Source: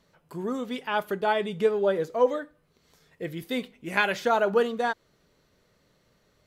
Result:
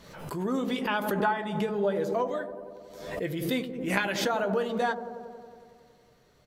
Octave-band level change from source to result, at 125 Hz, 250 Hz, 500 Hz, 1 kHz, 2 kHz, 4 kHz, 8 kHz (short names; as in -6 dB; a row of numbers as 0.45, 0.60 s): +4.0, +2.5, -4.0, -2.0, -2.0, 0.0, +5.5 dB